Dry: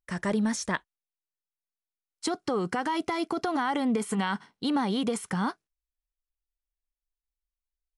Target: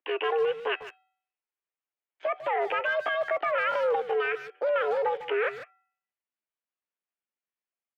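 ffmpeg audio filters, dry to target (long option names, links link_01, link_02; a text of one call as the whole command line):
ffmpeg -i in.wav -filter_complex "[0:a]bandreject=frequency=408.4:width_type=h:width=4,bandreject=frequency=816.8:width_type=h:width=4,bandreject=frequency=1225.2:width_type=h:width=4,bandreject=frequency=1633.6:width_type=h:width=4,bandreject=frequency=2042:width_type=h:width=4,bandreject=frequency=2450.4:width_type=h:width=4,bandreject=frequency=2858.8:width_type=h:width=4,bandreject=frequency=3267.2:width_type=h:width=4,asplit=2[link_01][link_02];[link_02]acompressor=threshold=-37dB:ratio=5,volume=1dB[link_03];[link_01][link_03]amix=inputs=2:normalize=0,asetrate=66075,aresample=44100,atempo=0.66742,asoftclip=type=hard:threshold=-22.5dB,highpass=frequency=160:width_type=q:width=0.5412,highpass=frequency=160:width_type=q:width=1.307,lowpass=frequency=2800:width_type=q:width=0.5176,lowpass=frequency=2800:width_type=q:width=0.7071,lowpass=frequency=2800:width_type=q:width=1.932,afreqshift=140,asplit=2[link_04][link_05];[link_05]adelay=150,highpass=300,lowpass=3400,asoftclip=type=hard:threshold=-25dB,volume=-12dB[link_06];[link_04][link_06]amix=inputs=2:normalize=0" out.wav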